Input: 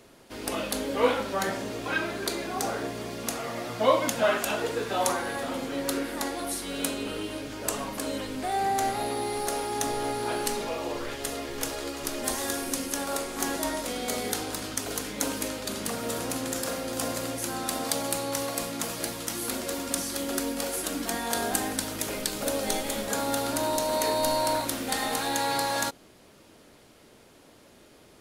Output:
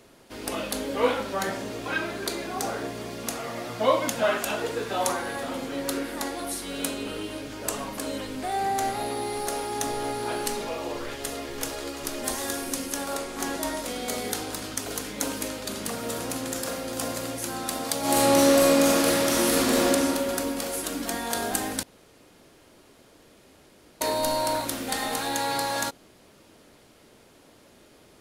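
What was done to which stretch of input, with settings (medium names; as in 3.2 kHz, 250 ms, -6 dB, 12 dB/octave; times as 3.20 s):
13.14–13.63 s: treble shelf 8.6 kHz -5.5 dB
17.99–19.87 s: reverb throw, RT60 2.9 s, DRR -10.5 dB
21.83–24.01 s: room tone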